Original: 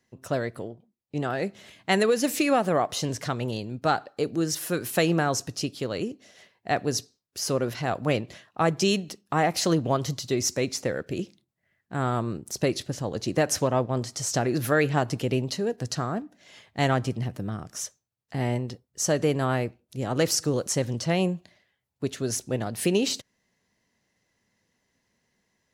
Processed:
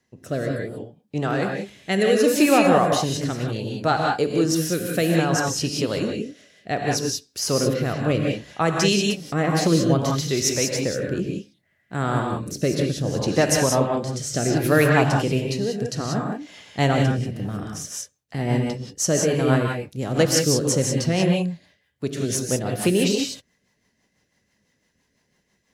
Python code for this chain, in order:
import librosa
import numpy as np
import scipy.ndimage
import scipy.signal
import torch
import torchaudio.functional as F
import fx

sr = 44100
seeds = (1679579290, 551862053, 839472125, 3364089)

y = fx.rev_gated(x, sr, seeds[0], gate_ms=210, shape='rising', drr_db=0.5)
y = fx.rotary_switch(y, sr, hz=0.65, then_hz=6.0, switch_at_s=17.34)
y = F.gain(torch.from_numpy(y), 4.5).numpy()